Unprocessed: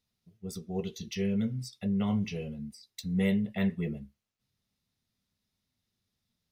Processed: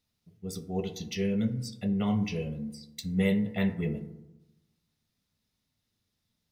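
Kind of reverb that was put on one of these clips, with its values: FDN reverb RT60 0.98 s, low-frequency decay 1.2×, high-frequency decay 0.35×, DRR 9 dB; gain +2 dB

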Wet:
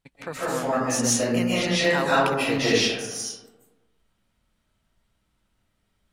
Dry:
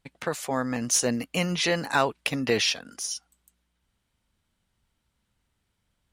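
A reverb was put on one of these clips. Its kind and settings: digital reverb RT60 1.2 s, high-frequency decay 0.4×, pre-delay 0.11 s, DRR -9 dB; gain -5.5 dB

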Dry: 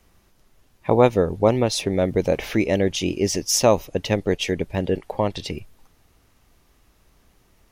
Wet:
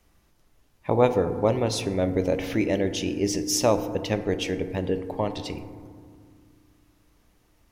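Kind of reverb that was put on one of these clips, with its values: FDN reverb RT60 2 s, low-frequency decay 1.55×, high-frequency decay 0.3×, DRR 8.5 dB; gain -5 dB

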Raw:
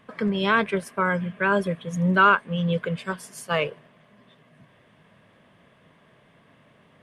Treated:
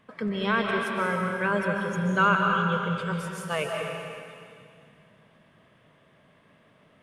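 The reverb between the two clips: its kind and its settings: digital reverb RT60 2.3 s, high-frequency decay 1×, pre-delay 0.105 s, DRR 0.5 dB; gain -5 dB

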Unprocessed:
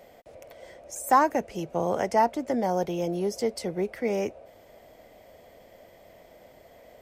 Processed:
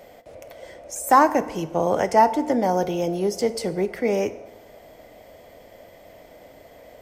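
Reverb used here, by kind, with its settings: FDN reverb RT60 1 s, low-frequency decay 1×, high-frequency decay 0.7×, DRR 11.5 dB; gain +5 dB

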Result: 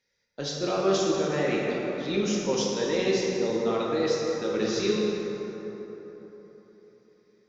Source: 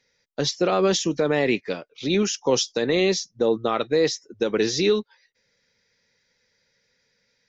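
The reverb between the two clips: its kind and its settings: plate-style reverb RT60 4 s, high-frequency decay 0.45×, DRR -4.5 dB; gain -10 dB

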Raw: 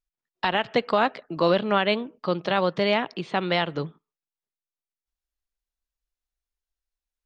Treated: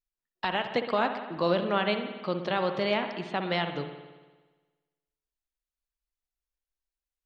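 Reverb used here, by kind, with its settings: spring tank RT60 1.3 s, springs 58 ms, chirp 30 ms, DRR 7 dB; gain -5.5 dB

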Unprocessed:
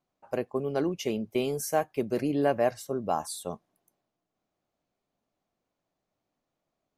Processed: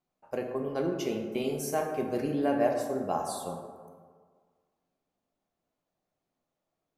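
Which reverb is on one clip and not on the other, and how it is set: plate-style reverb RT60 1.7 s, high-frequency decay 0.4×, DRR 1.5 dB; gain -4 dB

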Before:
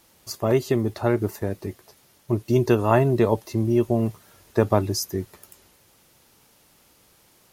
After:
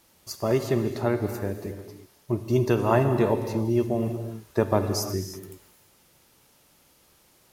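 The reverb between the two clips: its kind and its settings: non-linear reverb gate 0.37 s flat, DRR 6.5 dB; gain -3 dB

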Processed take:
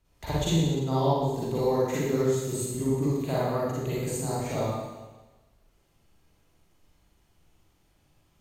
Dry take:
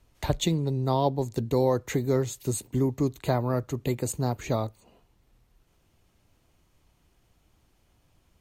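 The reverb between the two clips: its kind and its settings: Schroeder reverb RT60 1.2 s, DRR -9 dB; gain -9 dB

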